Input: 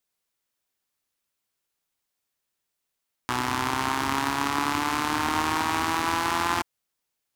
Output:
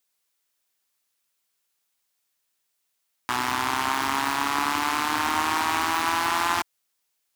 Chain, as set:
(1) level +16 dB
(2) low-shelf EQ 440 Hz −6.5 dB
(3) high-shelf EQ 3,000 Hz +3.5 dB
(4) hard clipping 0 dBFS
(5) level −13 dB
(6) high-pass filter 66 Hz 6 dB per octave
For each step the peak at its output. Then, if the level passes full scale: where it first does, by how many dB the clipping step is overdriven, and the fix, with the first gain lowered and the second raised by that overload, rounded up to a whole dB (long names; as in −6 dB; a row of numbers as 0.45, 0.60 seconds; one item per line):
+8.0, +7.5, +10.0, 0.0, −13.0, −12.5 dBFS
step 1, 10.0 dB
step 1 +6 dB, step 5 −3 dB